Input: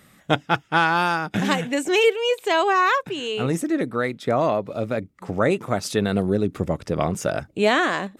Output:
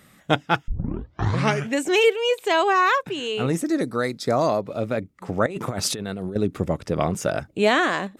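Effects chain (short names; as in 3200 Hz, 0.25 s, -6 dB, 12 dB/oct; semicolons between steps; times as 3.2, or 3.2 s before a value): 0.68 tape start 1.08 s; 3.66–4.61 resonant high shelf 3800 Hz +6.5 dB, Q 3; 5.46–6.36 negative-ratio compressor -29 dBFS, ratio -1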